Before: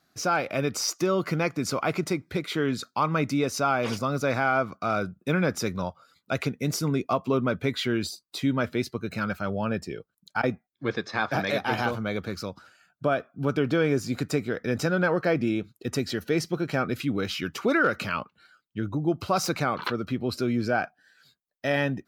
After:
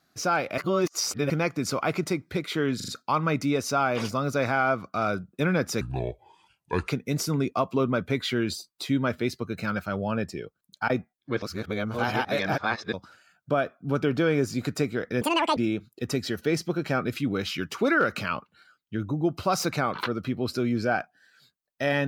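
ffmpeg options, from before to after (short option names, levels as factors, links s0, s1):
-filter_complex "[0:a]asplit=12[s0][s1][s2][s3][s4][s5][s6][s7][s8][s9][s10][s11];[s0]atrim=end=0.582[s12];[s1]atrim=start=0.578:end=1.302,asetpts=PTS-STARTPTS,areverse[s13];[s2]atrim=start=1.298:end=2.802[s14];[s3]atrim=start=2.758:end=2.802[s15];[s4]atrim=start=2.758:end=2.802[s16];[s5]atrim=start=2.758:end=5.694[s17];[s6]atrim=start=5.69:end=6.42,asetpts=PTS-STARTPTS,asetrate=29988,aresample=44100[s18];[s7]atrim=start=6.416:end=10.962[s19];[s8]atrim=start=10.958:end=12.472,asetpts=PTS-STARTPTS,areverse[s20];[s9]atrim=start=12.468:end=14.754[s21];[s10]atrim=start=14.75:end=15.4,asetpts=PTS-STARTPTS,asetrate=81585,aresample=44100[s22];[s11]atrim=start=15.396[s23];[s12][s13]acrossfade=d=0.004:c1=hsin:c2=hsin[s24];[s24][s14]acrossfade=d=0.004:c1=hsin:c2=hsin[s25];[s25][s15]acrossfade=d=0.004:c1=hsin:c2=hsin[s26];[s26][s16]acrossfade=d=0.004:c1=hsin:c2=hsin[s27];[s27][s17]acrossfade=d=0.004:c1=hsin:c2=hsin[s28];[s28][s18]acrossfade=d=0.004:c1=hsin:c2=hsin[s29];[s29][s19]acrossfade=d=0.004:c1=hsin:c2=hsin[s30];[s30][s20]acrossfade=d=0.004:c1=hsin:c2=hsin[s31];[s31][s21]acrossfade=d=0.004:c1=hsin:c2=hsin[s32];[s32][s22]acrossfade=d=0.004:c1=hsin:c2=hsin[s33];[s33][s23]acrossfade=d=0.004:c1=hsin:c2=hsin"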